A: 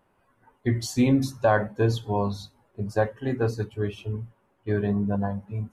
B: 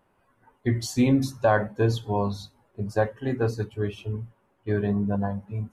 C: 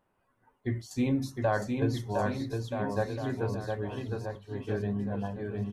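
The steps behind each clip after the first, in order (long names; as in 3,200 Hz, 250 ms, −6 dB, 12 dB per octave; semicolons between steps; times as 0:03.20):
no processing that can be heard
square-wave tremolo 1.1 Hz, depth 65%, duty 90%; bouncing-ball delay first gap 710 ms, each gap 0.8×, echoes 5; level −7.5 dB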